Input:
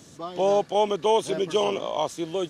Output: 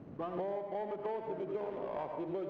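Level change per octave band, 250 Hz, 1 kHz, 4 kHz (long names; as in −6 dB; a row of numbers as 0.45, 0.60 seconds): −10.5 dB, −15.0 dB, below −30 dB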